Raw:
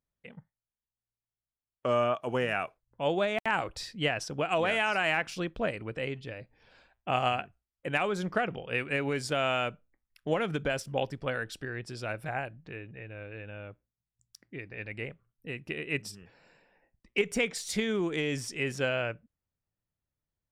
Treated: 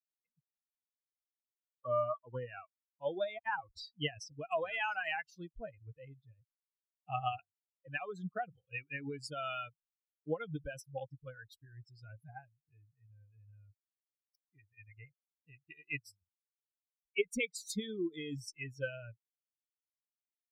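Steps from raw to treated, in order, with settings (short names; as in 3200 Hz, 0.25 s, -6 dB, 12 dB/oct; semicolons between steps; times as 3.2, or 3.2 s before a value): per-bin expansion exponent 3; 13.53–15.99 bell 2300 Hz +7 dB 1.7 oct; gain -1.5 dB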